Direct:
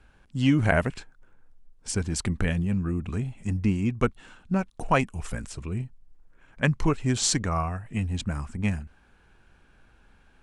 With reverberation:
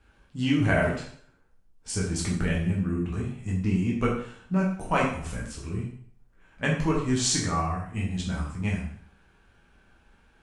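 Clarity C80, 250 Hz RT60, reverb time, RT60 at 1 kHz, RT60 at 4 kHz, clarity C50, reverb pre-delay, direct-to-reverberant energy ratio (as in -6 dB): 7.5 dB, 0.55 s, 0.55 s, 0.55 s, 0.55 s, 4.0 dB, 5 ms, -4.0 dB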